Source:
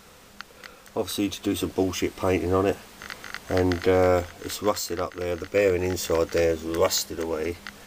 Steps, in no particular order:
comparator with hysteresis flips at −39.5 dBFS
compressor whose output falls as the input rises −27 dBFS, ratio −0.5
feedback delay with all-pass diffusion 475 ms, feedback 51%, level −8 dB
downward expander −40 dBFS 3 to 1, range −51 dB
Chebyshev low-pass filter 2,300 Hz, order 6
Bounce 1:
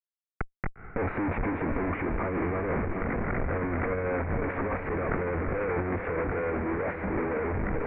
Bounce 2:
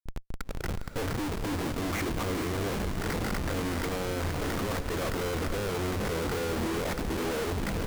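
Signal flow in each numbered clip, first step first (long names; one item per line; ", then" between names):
downward expander, then comparator with hysteresis, then feedback delay with all-pass diffusion, then compressor whose output falls as the input rises, then Chebyshev low-pass filter
compressor whose output falls as the input rises, then Chebyshev low-pass filter, then comparator with hysteresis, then feedback delay with all-pass diffusion, then downward expander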